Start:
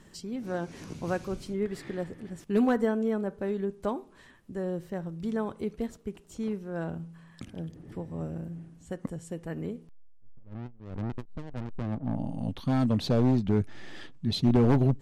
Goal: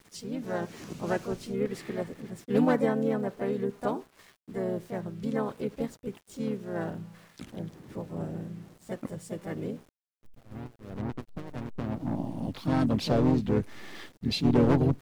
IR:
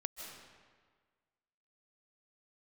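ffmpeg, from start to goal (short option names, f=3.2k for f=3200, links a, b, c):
-filter_complex "[0:a]lowshelf=f=95:g=-10,aeval=exprs='val(0)*gte(abs(val(0)),0.00237)':c=same,asplit=3[a][b][c];[b]asetrate=29433,aresample=44100,atempo=1.49831,volume=-9dB[d];[c]asetrate=52444,aresample=44100,atempo=0.840896,volume=-5dB[e];[a][d][e]amix=inputs=3:normalize=0"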